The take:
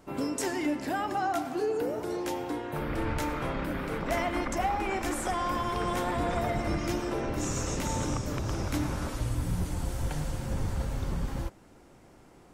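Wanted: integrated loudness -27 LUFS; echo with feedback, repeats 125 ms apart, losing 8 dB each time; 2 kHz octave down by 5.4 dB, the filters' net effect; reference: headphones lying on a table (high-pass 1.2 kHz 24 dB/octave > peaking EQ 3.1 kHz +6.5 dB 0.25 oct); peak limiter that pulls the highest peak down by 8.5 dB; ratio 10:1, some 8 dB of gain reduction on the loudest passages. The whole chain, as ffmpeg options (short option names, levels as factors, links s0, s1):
-af "equalizer=f=2000:t=o:g=-7,acompressor=threshold=0.02:ratio=10,alimiter=level_in=2.66:limit=0.0631:level=0:latency=1,volume=0.376,highpass=f=1200:w=0.5412,highpass=f=1200:w=1.3066,equalizer=f=3100:t=o:w=0.25:g=6.5,aecho=1:1:125|250|375|500|625:0.398|0.159|0.0637|0.0255|0.0102,volume=13.3"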